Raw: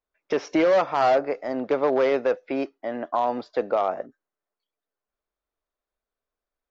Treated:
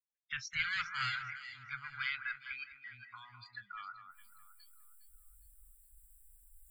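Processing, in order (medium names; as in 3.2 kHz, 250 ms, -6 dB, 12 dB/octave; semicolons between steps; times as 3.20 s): reverse; upward compressor, threshold -28 dBFS; reverse; spectral noise reduction 30 dB; Chebyshev band-stop 130–1500 Hz, order 4; echo whose repeats swap between lows and highs 205 ms, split 2 kHz, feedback 55%, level -8 dB; trim -1 dB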